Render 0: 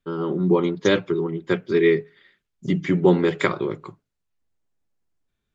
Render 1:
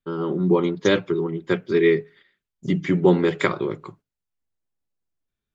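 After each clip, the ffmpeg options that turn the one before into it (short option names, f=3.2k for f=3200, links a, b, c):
-af "agate=range=-7dB:threshold=-49dB:ratio=16:detection=peak"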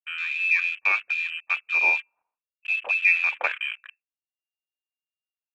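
-af "lowpass=f=2.4k:t=q:w=0.5098,lowpass=f=2.4k:t=q:w=0.6013,lowpass=f=2.4k:t=q:w=0.9,lowpass=f=2.4k:t=q:w=2.563,afreqshift=-2800,afwtdn=0.0355,volume=-4dB"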